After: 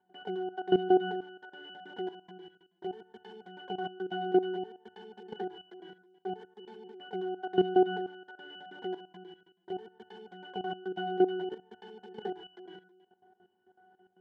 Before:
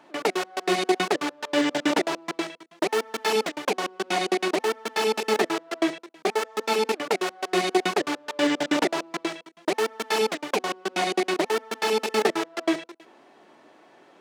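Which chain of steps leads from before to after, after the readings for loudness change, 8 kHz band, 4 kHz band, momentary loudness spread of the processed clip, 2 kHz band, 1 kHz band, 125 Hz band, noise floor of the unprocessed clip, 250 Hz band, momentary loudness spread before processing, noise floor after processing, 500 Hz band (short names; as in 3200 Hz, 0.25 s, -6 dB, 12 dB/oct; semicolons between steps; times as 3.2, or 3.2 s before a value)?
-7.5 dB, under -40 dB, -16.0 dB, 23 LU, -16.5 dB, -9.5 dB, -3.5 dB, -55 dBFS, -7.5 dB, 6 LU, -76 dBFS, -7.5 dB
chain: octave resonator F#, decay 0.36 s; level quantiser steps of 14 dB; gain +8 dB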